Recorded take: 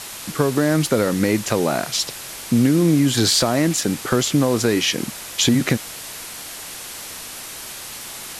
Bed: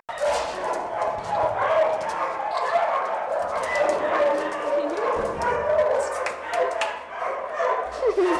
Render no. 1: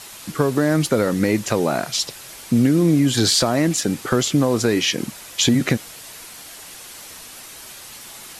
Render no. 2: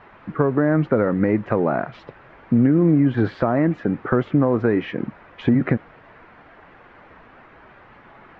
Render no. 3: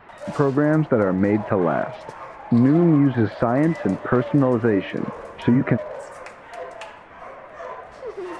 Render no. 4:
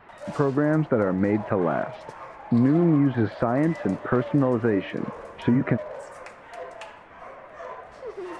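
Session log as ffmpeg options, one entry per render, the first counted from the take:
ffmpeg -i in.wav -af "afftdn=noise_reduction=6:noise_floor=-34" out.wav
ffmpeg -i in.wav -af "lowpass=frequency=1800:width=0.5412,lowpass=frequency=1800:width=1.3066" out.wav
ffmpeg -i in.wav -i bed.wav -filter_complex "[1:a]volume=-11.5dB[link_01];[0:a][link_01]amix=inputs=2:normalize=0" out.wav
ffmpeg -i in.wav -af "volume=-3.5dB" out.wav

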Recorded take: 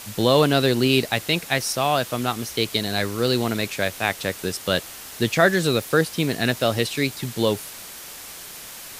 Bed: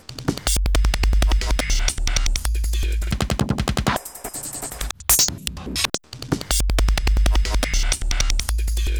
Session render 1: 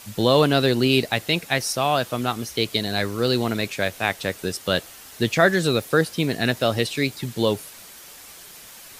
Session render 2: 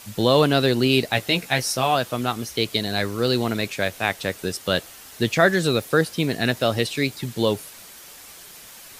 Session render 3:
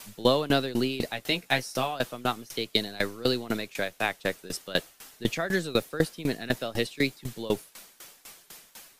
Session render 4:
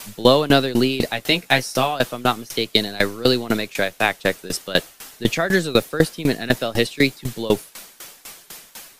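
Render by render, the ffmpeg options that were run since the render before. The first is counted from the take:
ffmpeg -i in.wav -af "afftdn=noise_reduction=6:noise_floor=-39" out.wav
ffmpeg -i in.wav -filter_complex "[0:a]asettb=1/sr,asplit=3[link_01][link_02][link_03];[link_01]atrim=end=1.134[link_04];[link_02]atrim=start=1.13:end=1.95,asetpts=PTS-STARTPTS,afade=type=in:duration=0.004:curve=qsin,afade=type=out:start_time=0.816:duration=0.004:curve=qsin,asplit=2[link_05][link_06];[link_06]adelay=16,volume=-6dB[link_07];[link_05][link_07]amix=inputs=2:normalize=0,atrim=end_sample=36162[link_08];[link_03]atrim=start=1.946[link_09];[link_04][link_08]acrossfade=duration=0.004:curve1=hsin:curve2=qsin[link_10];[link_10][link_09]acrossfade=duration=0.004:curve1=qsin:curve2=hsin" out.wav
ffmpeg -i in.wav -filter_complex "[0:a]acrossover=split=110|730|3800[link_01][link_02][link_03][link_04];[link_01]aeval=exprs='abs(val(0))':channel_layout=same[link_05];[link_05][link_02][link_03][link_04]amix=inputs=4:normalize=0,aeval=exprs='val(0)*pow(10,-20*if(lt(mod(4*n/s,1),2*abs(4)/1000),1-mod(4*n/s,1)/(2*abs(4)/1000),(mod(4*n/s,1)-2*abs(4)/1000)/(1-2*abs(4)/1000))/20)':channel_layout=same" out.wav
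ffmpeg -i in.wav -af "volume=9dB,alimiter=limit=-1dB:level=0:latency=1" out.wav

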